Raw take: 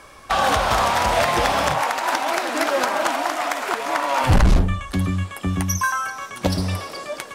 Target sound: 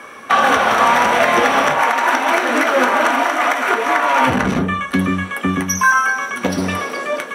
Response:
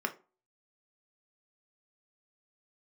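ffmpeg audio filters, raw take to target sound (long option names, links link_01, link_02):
-filter_complex "[0:a]highpass=frequency=73:width=0.5412,highpass=frequency=73:width=1.3066,alimiter=limit=-12.5dB:level=0:latency=1:release=164,acontrast=81[link_01];[1:a]atrim=start_sample=2205,asetrate=48510,aresample=44100[link_02];[link_01][link_02]afir=irnorm=-1:irlink=0,volume=-2dB"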